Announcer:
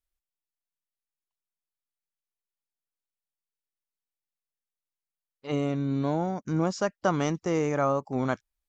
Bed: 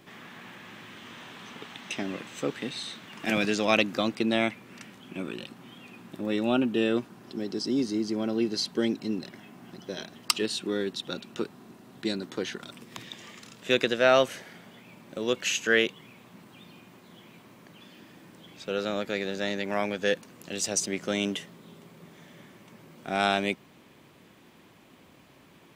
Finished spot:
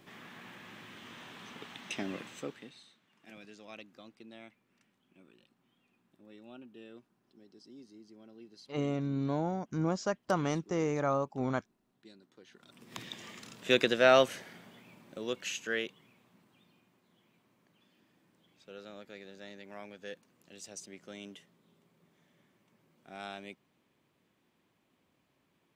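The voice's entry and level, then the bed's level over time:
3.25 s, -5.0 dB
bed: 2.27 s -4.5 dB
2.97 s -26 dB
12.44 s -26 dB
12.97 s -2 dB
14.2 s -2 dB
16.96 s -18.5 dB

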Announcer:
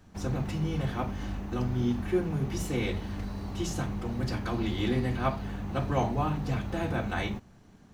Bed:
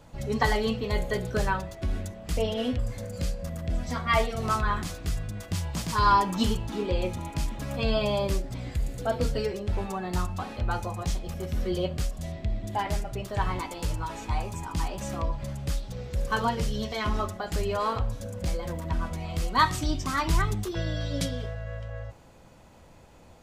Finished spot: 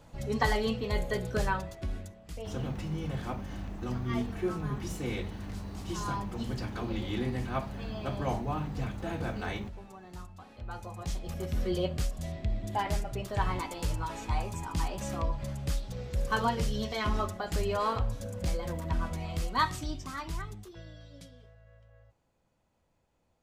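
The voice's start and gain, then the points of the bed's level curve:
2.30 s, -4.5 dB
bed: 1.69 s -3 dB
2.55 s -16.5 dB
10.43 s -16.5 dB
11.35 s -2 dB
19.23 s -2 dB
21.24 s -21.5 dB

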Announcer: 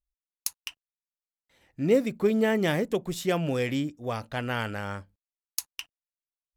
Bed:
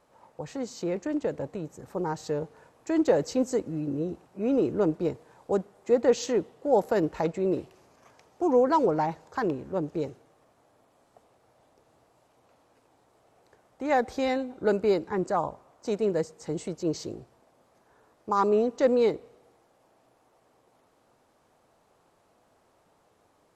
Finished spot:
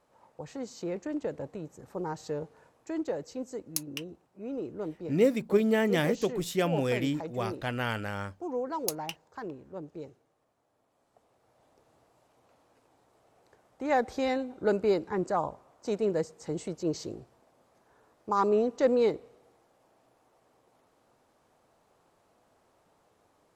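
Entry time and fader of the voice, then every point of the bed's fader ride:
3.30 s, -1.5 dB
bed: 2.69 s -4.5 dB
3.16 s -11.5 dB
10.65 s -11.5 dB
11.73 s -2 dB

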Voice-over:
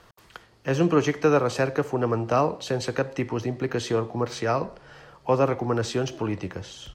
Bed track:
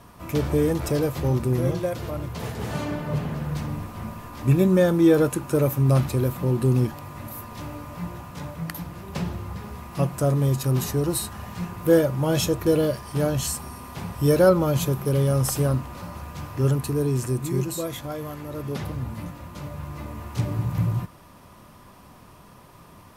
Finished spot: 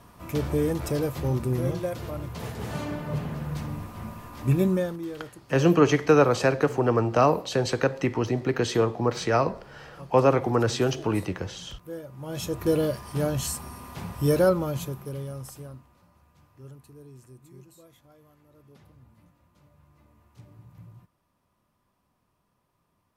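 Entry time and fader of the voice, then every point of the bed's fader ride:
4.85 s, +2.0 dB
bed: 4.69 s -3.5 dB
5.11 s -20.5 dB
12.02 s -20.5 dB
12.65 s -3 dB
14.38 s -3 dB
16.04 s -24.5 dB

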